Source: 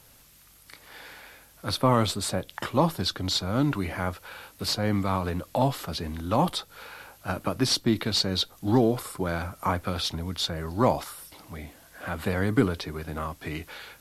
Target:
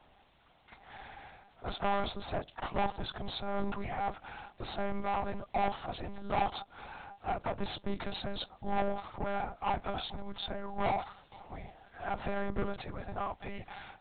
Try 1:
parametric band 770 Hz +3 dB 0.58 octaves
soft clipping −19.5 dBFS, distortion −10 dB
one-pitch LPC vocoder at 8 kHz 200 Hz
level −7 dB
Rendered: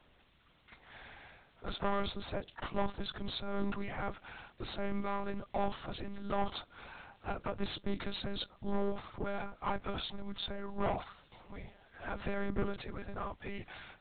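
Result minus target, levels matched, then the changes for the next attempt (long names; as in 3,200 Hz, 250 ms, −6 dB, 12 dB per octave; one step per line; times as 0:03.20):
1,000 Hz band −3.5 dB
change: parametric band 770 Hz +14.5 dB 0.58 octaves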